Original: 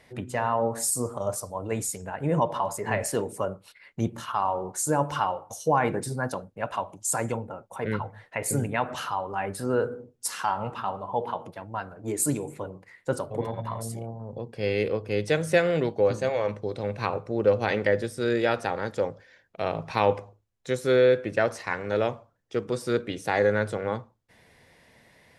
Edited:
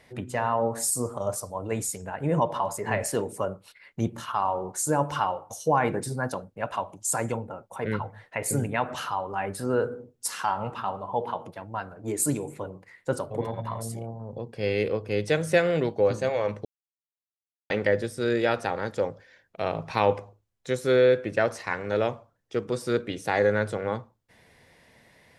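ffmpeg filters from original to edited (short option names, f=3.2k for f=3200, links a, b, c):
-filter_complex "[0:a]asplit=3[a][b][c];[a]atrim=end=16.65,asetpts=PTS-STARTPTS,afade=t=out:st=16.646:d=0.004:c=hsin[d];[b]atrim=start=16.65:end=17.7,asetpts=PTS-STARTPTS,volume=0[e];[c]atrim=start=17.7,asetpts=PTS-STARTPTS,afade=t=in:d=0.004:c=hsin[f];[d][e][f]concat=n=3:v=0:a=1"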